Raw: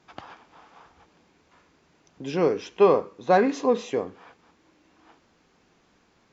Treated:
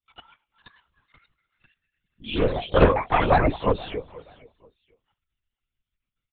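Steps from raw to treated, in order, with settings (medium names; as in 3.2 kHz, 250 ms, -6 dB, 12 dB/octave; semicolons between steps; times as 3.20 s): expander on every frequency bin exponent 2; treble shelf 2.1 kHz +9.5 dB; in parallel at +1.5 dB: compression, threshold -30 dBFS, peak gain reduction 16 dB; on the sum: ever faster or slower copies 520 ms, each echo +4 st, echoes 3; feedback delay 479 ms, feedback 26%, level -21.5 dB; LPC vocoder at 8 kHz whisper; loudspeaker Doppler distortion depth 0.21 ms; trim -1 dB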